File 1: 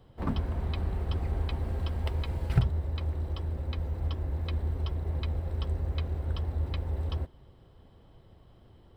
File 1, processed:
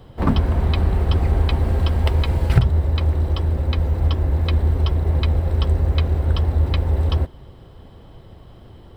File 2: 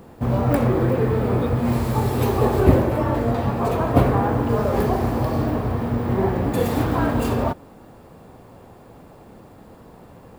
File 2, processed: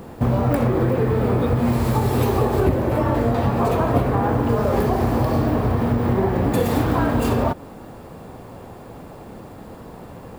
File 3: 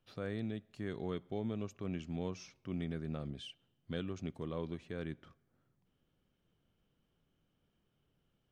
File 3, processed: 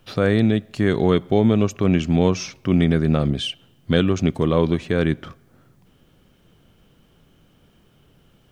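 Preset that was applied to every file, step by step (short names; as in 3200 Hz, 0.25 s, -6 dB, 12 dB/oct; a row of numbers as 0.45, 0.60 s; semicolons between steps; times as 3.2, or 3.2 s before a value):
compressor 6:1, threshold -22 dBFS; match loudness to -20 LUFS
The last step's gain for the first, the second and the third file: +13.0, +6.5, +22.0 dB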